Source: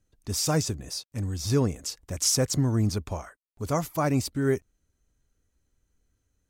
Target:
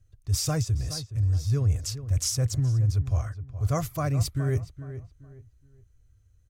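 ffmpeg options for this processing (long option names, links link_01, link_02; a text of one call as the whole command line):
ffmpeg -i in.wav -filter_complex "[0:a]lowshelf=frequency=150:width_type=q:width=3:gain=10.5,areverse,acompressor=threshold=-22dB:ratio=6,areverse,asuperstop=centerf=890:order=4:qfactor=5.7,asplit=2[link_01][link_02];[link_02]adelay=419,lowpass=frequency=2100:poles=1,volume=-12dB,asplit=2[link_03][link_04];[link_04]adelay=419,lowpass=frequency=2100:poles=1,volume=0.3,asplit=2[link_05][link_06];[link_06]adelay=419,lowpass=frequency=2100:poles=1,volume=0.3[link_07];[link_01][link_03][link_05][link_07]amix=inputs=4:normalize=0" out.wav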